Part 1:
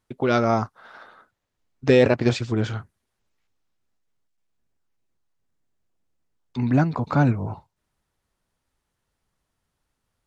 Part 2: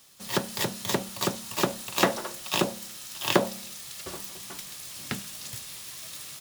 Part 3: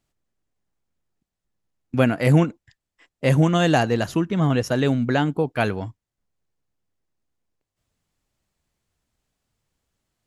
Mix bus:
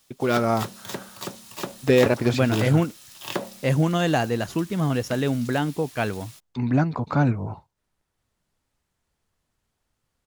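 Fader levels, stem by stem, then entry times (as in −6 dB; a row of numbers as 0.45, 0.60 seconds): −1.5, −6.5, −3.5 decibels; 0.00, 0.00, 0.40 seconds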